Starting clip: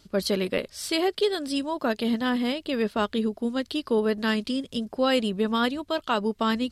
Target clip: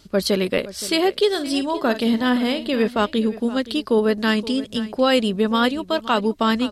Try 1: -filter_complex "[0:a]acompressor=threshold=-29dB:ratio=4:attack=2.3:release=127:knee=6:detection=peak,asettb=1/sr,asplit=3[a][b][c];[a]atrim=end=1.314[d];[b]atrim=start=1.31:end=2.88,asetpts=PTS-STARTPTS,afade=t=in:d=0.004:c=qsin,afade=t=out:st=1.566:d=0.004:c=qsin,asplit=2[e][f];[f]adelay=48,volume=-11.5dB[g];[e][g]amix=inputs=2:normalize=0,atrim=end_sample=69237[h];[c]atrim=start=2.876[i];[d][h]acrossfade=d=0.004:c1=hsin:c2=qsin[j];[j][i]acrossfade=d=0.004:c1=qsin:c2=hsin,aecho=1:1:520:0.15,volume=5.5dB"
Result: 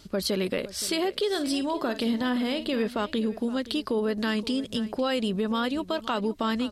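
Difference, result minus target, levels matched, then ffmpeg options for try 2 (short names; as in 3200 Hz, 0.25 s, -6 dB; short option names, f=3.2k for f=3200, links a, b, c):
compressor: peak gain reduction +11 dB
-filter_complex "[0:a]asettb=1/sr,asplit=3[a][b][c];[a]atrim=end=1.314[d];[b]atrim=start=1.31:end=2.88,asetpts=PTS-STARTPTS,afade=t=in:d=0.004:c=qsin,afade=t=out:st=1.566:d=0.004:c=qsin,asplit=2[e][f];[f]adelay=48,volume=-11.5dB[g];[e][g]amix=inputs=2:normalize=0,atrim=end_sample=69237[h];[c]atrim=start=2.876[i];[d][h]acrossfade=d=0.004:c1=hsin:c2=qsin[j];[j][i]acrossfade=d=0.004:c1=qsin:c2=hsin,aecho=1:1:520:0.15,volume=5.5dB"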